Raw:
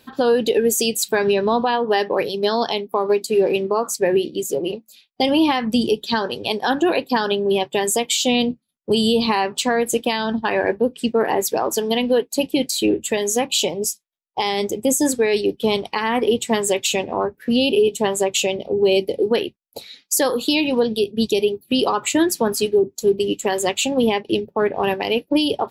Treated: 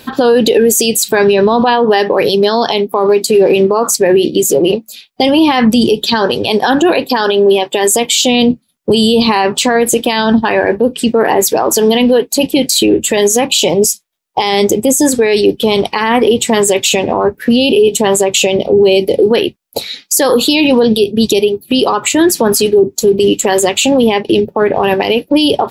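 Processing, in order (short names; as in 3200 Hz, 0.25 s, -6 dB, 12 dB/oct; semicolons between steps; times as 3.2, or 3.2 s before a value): 7.1–7.92 HPF 260 Hz 12 dB/oct; 21.29–22.21 compressor 2.5:1, threshold -25 dBFS, peak gain reduction 8 dB; maximiser +17 dB; gain -1 dB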